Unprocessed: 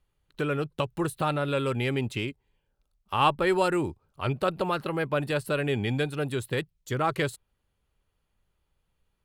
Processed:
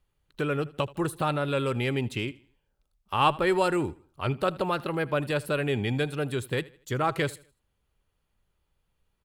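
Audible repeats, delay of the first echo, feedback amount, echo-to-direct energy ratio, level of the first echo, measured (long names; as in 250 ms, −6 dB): 2, 79 ms, 36%, −20.5 dB, −21.0 dB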